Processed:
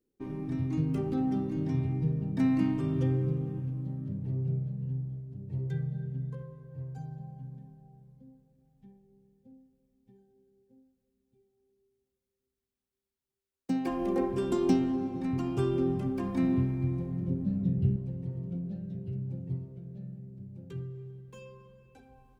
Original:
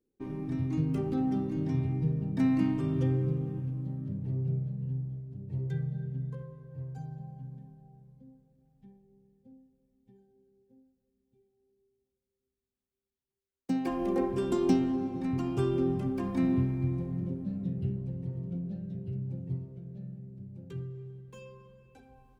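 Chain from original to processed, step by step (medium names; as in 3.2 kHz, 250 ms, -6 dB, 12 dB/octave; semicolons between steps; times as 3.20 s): 17.28–17.96 s: bass shelf 240 Hz +7.5 dB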